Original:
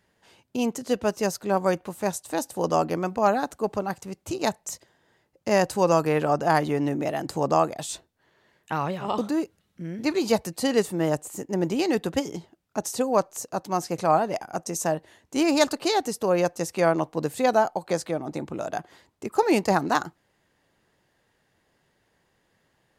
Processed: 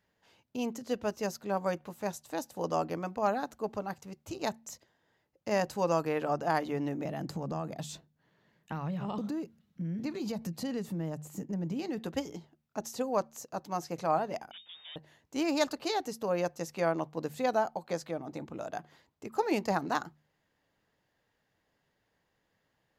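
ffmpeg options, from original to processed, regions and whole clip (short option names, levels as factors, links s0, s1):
-filter_complex "[0:a]asettb=1/sr,asplit=3[s0][s1][s2];[s0]atrim=end=7.054[s3];[s1]atrim=start=7.05:end=11.98,asetpts=PTS-STARTPTS,afade=t=in:d=0.004:c=qsin,afade=t=out:st=4.926:d=0.004:c=qsin,equalizer=f=170:t=o:w=1.2:g=13,acompressor=threshold=0.0631:ratio=4:attack=3.2:release=140:knee=1:detection=peak[s4];[s2]atrim=start=11.976[s5];[s3][s4]acrossfade=d=0.004:c1=hsin:c2=qsin[s6];[s6][s5]acrossfade=d=0.004:c1=qsin:c2=hsin,asettb=1/sr,asplit=3[s7][s8][s9];[s7]atrim=end=14.514[s10];[s8]atrim=start=14.51:end=14.96,asetpts=PTS-STARTPTS,afade=t=in:d=0.004:c=qsin,afade=t=out:st=0.446:d=0.004:c=qsin,aeval=exprs='(tanh(79.4*val(0)+0.4)-tanh(0.4))/79.4':c=same,lowpass=f=3100:t=q:w=0.5098,lowpass=f=3100:t=q:w=0.6013,lowpass=f=3100:t=q:w=0.9,lowpass=f=3100:t=q:w=2.563,afreqshift=-3700[s11];[s9]atrim=start=14.956[s12];[s10][s11]acrossfade=d=0.004:c1=hsin:c2=qsin[s13];[s13][s12]acrossfade=d=0.004:c1=qsin:c2=hsin,equalizer=f=9000:w=3:g=-10.5,bandreject=f=370:w=12,bandreject=f=75.52:t=h:w=4,bandreject=f=151.04:t=h:w=4,bandreject=f=226.56:t=h:w=4,volume=0.398"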